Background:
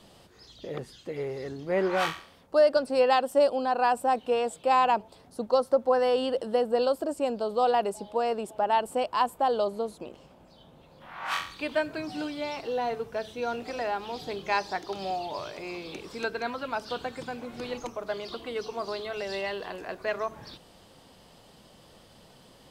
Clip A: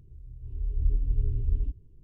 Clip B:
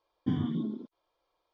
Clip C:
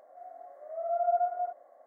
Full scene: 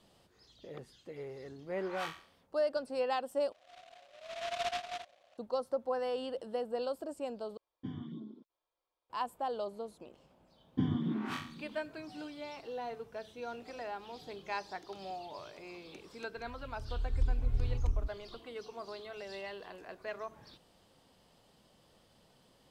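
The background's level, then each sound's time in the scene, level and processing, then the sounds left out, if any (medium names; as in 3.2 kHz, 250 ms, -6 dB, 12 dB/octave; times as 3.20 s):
background -11 dB
3.52 s: replace with C -9 dB + delay time shaken by noise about 2.3 kHz, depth 0.12 ms
7.57 s: replace with B -12.5 dB + peaking EQ 2.6 kHz +2 dB 2 oct
10.51 s: add B -2 dB + delay 501 ms -16.5 dB
16.36 s: add A -5 dB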